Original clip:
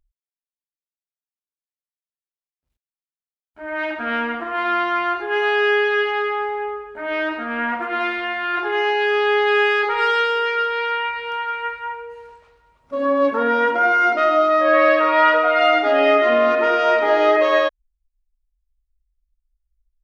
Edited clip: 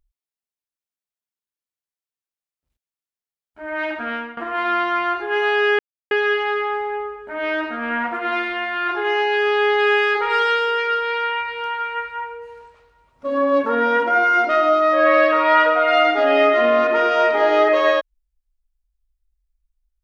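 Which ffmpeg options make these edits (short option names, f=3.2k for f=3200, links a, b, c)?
-filter_complex "[0:a]asplit=3[a][b][c];[a]atrim=end=4.37,asetpts=PTS-STARTPTS,afade=t=out:st=3.97:d=0.4:silence=0.149624[d];[b]atrim=start=4.37:end=5.79,asetpts=PTS-STARTPTS,afade=t=in:d=0.004:c=hsin:silence=0.149624,afade=t=out:st=1.416:d=0.004:c=hsin,apad=pad_dur=0.32[e];[c]atrim=start=5.79,asetpts=PTS-STARTPTS,afade=t=in:d=0.004:c=hsin[f];[d][e][f]concat=n=3:v=0:a=1"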